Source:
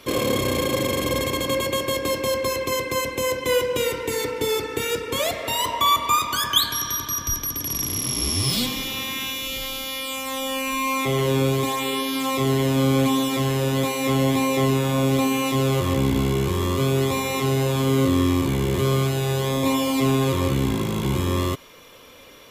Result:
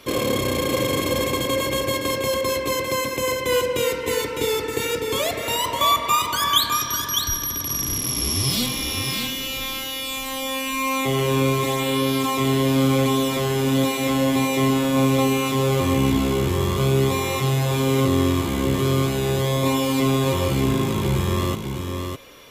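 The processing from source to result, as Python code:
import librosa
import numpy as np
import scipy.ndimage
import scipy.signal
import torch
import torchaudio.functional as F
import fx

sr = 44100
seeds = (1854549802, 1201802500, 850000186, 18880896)

y = x + 10.0 ** (-5.5 / 20.0) * np.pad(x, (int(606 * sr / 1000.0), 0))[:len(x)]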